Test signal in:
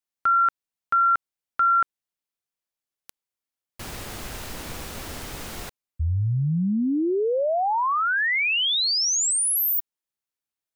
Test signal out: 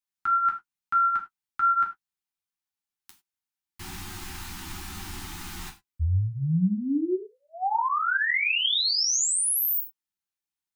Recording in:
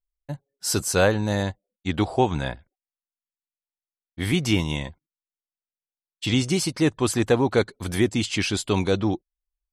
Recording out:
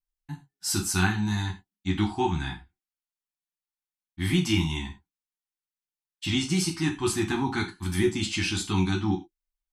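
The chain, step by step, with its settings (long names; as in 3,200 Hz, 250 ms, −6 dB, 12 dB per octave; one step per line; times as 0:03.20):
elliptic band-stop filter 370–770 Hz, stop band 40 dB
flanger 1 Hz, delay 10 ms, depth 2.5 ms, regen −29%
reverb whose tail is shaped and stops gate 120 ms falling, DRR 3 dB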